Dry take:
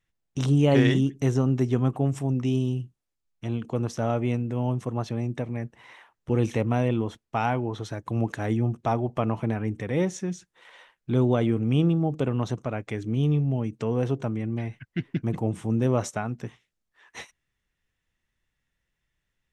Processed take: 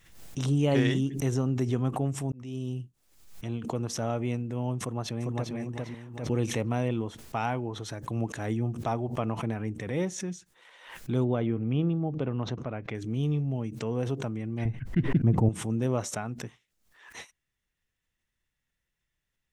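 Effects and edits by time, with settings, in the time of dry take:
2.32–2.81 s: fade in
4.80–5.54 s: echo throw 400 ms, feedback 30%, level -1.5 dB
11.24–12.95 s: distance through air 250 m
14.65–15.49 s: tilt EQ -3.5 dB/octave
whole clip: treble shelf 5 kHz +5.5 dB; swell ahead of each attack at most 82 dB/s; trim -5 dB

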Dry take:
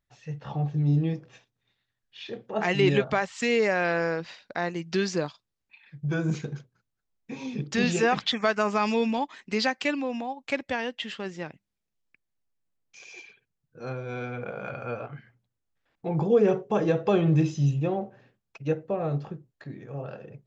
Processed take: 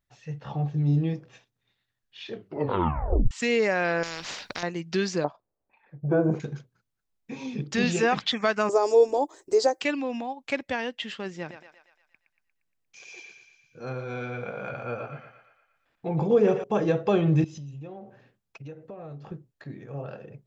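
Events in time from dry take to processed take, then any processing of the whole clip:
2.31 s: tape stop 1.00 s
4.03–4.63 s: spectrum-flattening compressor 4:1
5.24–6.40 s: FFT filter 180 Hz 0 dB, 640 Hz +14 dB, 3.7 kHz -20 dB
8.69–9.81 s: FFT filter 120 Hz 0 dB, 210 Hz -23 dB, 320 Hz +12 dB, 540 Hz +9 dB, 2.6 kHz -19 dB, 7.9 kHz +11 dB
11.37–16.64 s: thinning echo 117 ms, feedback 59%, high-pass 530 Hz, level -7 dB
17.44–19.32 s: compression, threshold -38 dBFS

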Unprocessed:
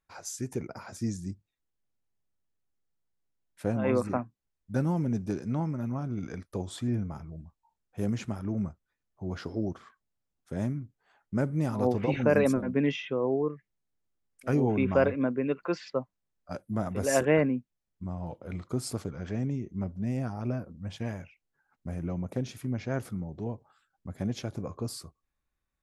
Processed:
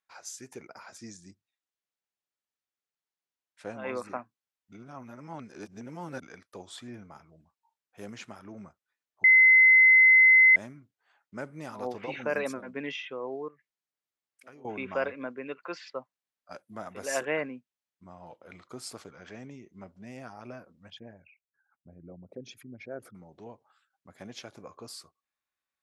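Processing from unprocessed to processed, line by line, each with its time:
0.98–3.97 s: low-pass 9.3 kHz 24 dB/octave
4.72–6.22 s: reverse
9.24–10.56 s: bleep 2.05 kHz -13.5 dBFS
13.48–14.65 s: compression 2.5:1, threshold -47 dBFS
20.90–23.15 s: resonances exaggerated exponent 2
whole clip: high-pass 1.3 kHz 6 dB/octave; treble shelf 7.9 kHz -10.5 dB; trim +1.5 dB

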